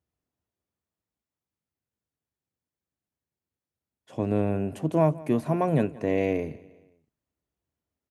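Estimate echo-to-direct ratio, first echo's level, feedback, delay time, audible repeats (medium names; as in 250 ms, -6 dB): -20.0 dB, -21.0 dB, 46%, 176 ms, 3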